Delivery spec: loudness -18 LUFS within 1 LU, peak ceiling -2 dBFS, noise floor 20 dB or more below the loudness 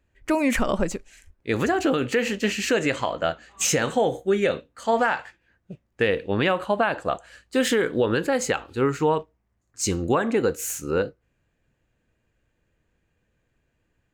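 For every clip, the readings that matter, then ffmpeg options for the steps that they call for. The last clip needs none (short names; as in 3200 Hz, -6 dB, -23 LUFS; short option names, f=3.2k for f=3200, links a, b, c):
loudness -24.0 LUFS; peak -11.0 dBFS; loudness target -18.0 LUFS
-> -af "volume=6dB"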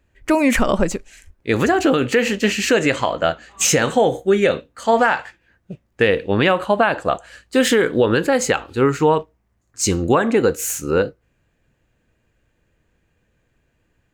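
loudness -18.0 LUFS; peak -5.0 dBFS; noise floor -67 dBFS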